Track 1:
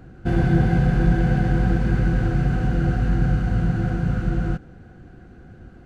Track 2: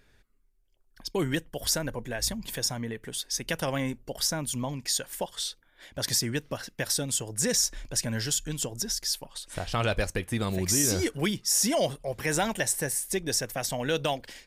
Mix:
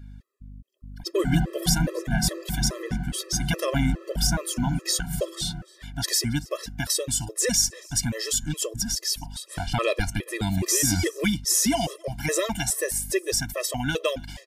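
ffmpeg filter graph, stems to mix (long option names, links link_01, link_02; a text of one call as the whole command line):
ffmpeg -i stem1.wav -i stem2.wav -filter_complex "[0:a]aecho=1:1:5.3:0.72,adelay=800,volume=-12.5dB,asplit=2[link_01][link_02];[link_02]volume=-3.5dB[link_03];[1:a]aeval=exprs='val(0)+0.00708*(sin(2*PI*50*n/s)+sin(2*PI*2*50*n/s)/2+sin(2*PI*3*50*n/s)/3+sin(2*PI*4*50*n/s)/4+sin(2*PI*5*50*n/s)/5)':channel_layout=same,volume=2dB,asplit=3[link_04][link_05][link_06];[link_05]volume=-24dB[link_07];[link_06]apad=whole_len=293821[link_08];[link_01][link_08]sidechaingate=range=-33dB:threshold=-32dB:ratio=16:detection=peak[link_09];[link_03][link_07]amix=inputs=2:normalize=0,aecho=0:1:277:1[link_10];[link_09][link_04][link_10]amix=inputs=3:normalize=0,dynaudnorm=framelen=570:gausssize=3:maxgain=4dB,afftfilt=real='re*gt(sin(2*PI*2.4*pts/sr)*(1-2*mod(floor(b*sr/1024/340),2)),0)':imag='im*gt(sin(2*PI*2.4*pts/sr)*(1-2*mod(floor(b*sr/1024/340),2)),0)':win_size=1024:overlap=0.75" out.wav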